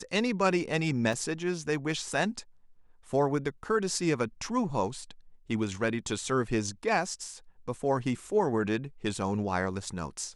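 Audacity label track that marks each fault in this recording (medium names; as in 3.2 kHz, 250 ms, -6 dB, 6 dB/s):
1.130000	1.130000	dropout 2.5 ms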